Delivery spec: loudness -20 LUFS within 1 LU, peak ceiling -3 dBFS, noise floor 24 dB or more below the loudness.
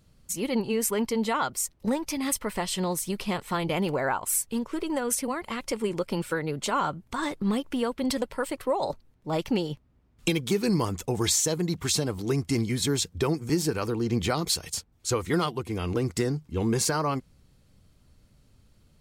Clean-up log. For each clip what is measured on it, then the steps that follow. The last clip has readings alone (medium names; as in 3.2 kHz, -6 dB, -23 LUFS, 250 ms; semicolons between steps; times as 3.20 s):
loudness -28.0 LUFS; peak level -12.0 dBFS; loudness target -20.0 LUFS
-> trim +8 dB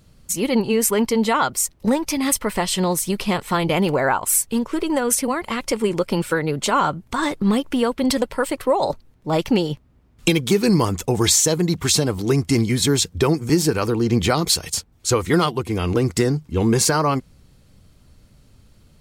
loudness -20.0 LUFS; peak level -4.0 dBFS; noise floor -54 dBFS